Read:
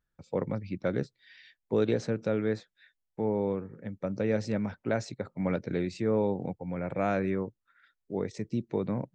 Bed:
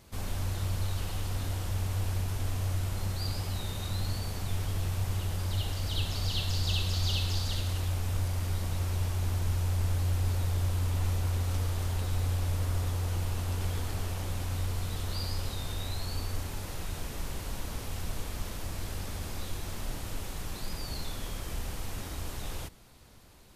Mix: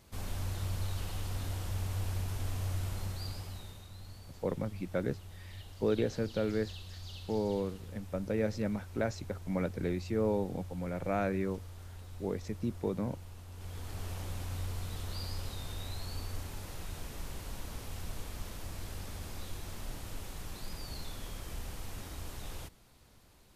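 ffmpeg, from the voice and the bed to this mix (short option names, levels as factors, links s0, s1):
-filter_complex "[0:a]adelay=4100,volume=0.668[s0];[1:a]volume=2.24,afade=t=out:st=2.89:d=0.98:silence=0.237137,afade=t=in:st=13.52:d=0.6:silence=0.281838[s1];[s0][s1]amix=inputs=2:normalize=0"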